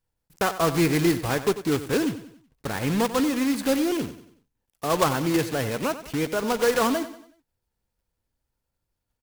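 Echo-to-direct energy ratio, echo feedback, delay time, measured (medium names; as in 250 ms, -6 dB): -12.5 dB, 42%, 93 ms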